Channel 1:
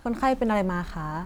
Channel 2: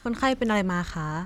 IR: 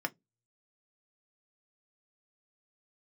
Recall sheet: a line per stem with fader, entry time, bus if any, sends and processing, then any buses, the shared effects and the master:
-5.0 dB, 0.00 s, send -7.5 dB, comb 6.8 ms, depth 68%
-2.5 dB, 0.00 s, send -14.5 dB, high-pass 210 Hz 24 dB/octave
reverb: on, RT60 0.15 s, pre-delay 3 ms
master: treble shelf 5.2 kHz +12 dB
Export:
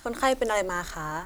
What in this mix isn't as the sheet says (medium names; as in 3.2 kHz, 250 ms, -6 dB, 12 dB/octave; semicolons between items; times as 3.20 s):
stem 1: missing comb 6.8 ms, depth 68%; reverb return -6.5 dB